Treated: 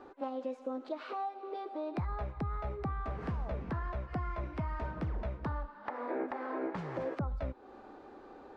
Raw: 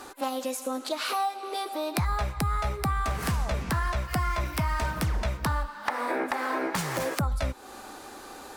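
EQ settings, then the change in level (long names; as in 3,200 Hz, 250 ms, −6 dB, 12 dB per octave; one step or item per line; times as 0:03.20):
head-to-tape spacing loss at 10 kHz 38 dB
parametric band 410 Hz +6 dB 1.6 octaves
−8.5 dB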